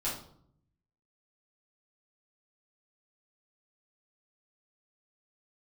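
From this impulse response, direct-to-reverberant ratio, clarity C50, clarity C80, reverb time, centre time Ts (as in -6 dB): -9.0 dB, 5.0 dB, 10.0 dB, 0.65 s, 37 ms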